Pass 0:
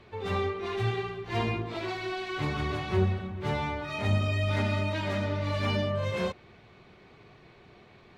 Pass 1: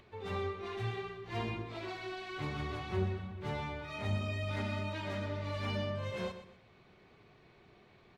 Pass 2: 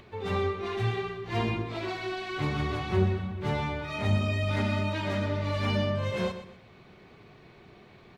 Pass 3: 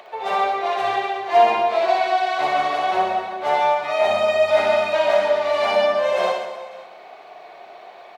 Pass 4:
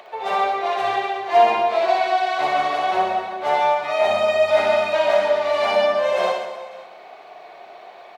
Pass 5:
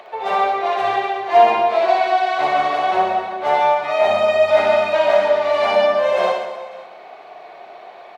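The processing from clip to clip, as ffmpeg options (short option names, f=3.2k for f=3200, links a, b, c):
-af "acompressor=mode=upward:threshold=-50dB:ratio=2.5,aecho=1:1:124|248|372:0.251|0.0754|0.0226,volume=-8dB"
-af "equalizer=f=190:t=o:w=1.6:g=2.5,volume=7.5dB"
-af "highpass=f=680:t=q:w=5.6,aecho=1:1:60|138|239.4|371.2|542.6:0.631|0.398|0.251|0.158|0.1,volume=6.5dB"
-af anull
-af "highshelf=f=4k:g=-6,volume=3dB"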